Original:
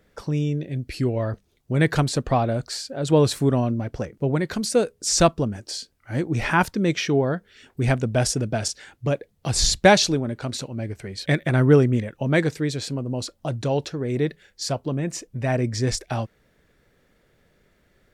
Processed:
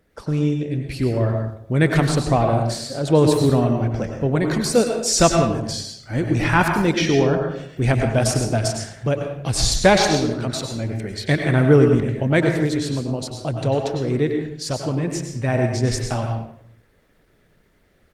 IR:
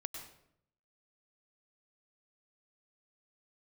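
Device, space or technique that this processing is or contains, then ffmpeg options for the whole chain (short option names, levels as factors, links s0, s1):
speakerphone in a meeting room: -filter_complex "[0:a]asplit=3[s0][s1][s2];[s0]afade=t=out:st=14.64:d=0.02[s3];[s1]bandreject=f=680:w=14,afade=t=in:st=14.64:d=0.02,afade=t=out:st=15.76:d=0.02[s4];[s2]afade=t=in:st=15.76:d=0.02[s5];[s3][s4][s5]amix=inputs=3:normalize=0[s6];[1:a]atrim=start_sample=2205[s7];[s6][s7]afir=irnorm=-1:irlink=0,asplit=2[s8][s9];[s9]adelay=90,highpass=300,lowpass=3400,asoftclip=type=hard:threshold=0.188,volume=0.251[s10];[s8][s10]amix=inputs=2:normalize=0,dynaudnorm=f=110:g=3:m=1.58,volume=1.19" -ar 48000 -c:a libopus -b:a 24k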